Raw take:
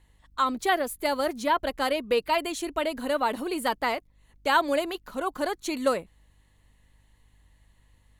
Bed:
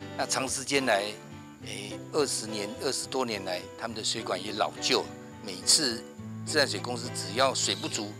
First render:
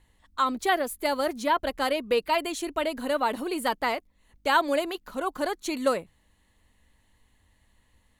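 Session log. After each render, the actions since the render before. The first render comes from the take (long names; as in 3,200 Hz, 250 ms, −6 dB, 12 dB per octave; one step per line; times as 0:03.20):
hum removal 50 Hz, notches 3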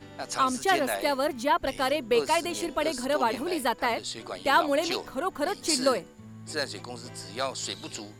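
mix in bed −6 dB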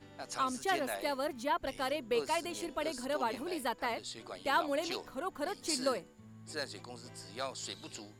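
level −8.5 dB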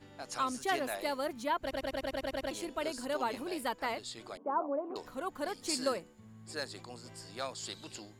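0:01.61: stutter in place 0.10 s, 9 plays
0:04.37–0:04.96: elliptic band-pass filter 220–1,100 Hz, stop band 60 dB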